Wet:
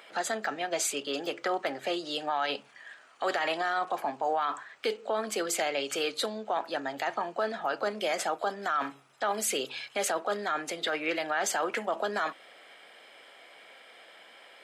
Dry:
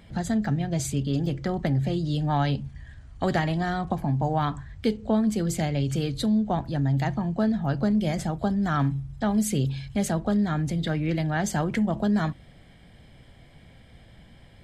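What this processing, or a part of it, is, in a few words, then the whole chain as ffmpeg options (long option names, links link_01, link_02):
laptop speaker: -af "highpass=frequency=430:width=0.5412,highpass=frequency=430:width=1.3066,equalizer=frequency=1300:width_type=o:width=0.49:gain=7.5,equalizer=frequency=2600:width_type=o:width=0.41:gain=6,alimiter=limit=-24dB:level=0:latency=1:release=16,volume=4dB"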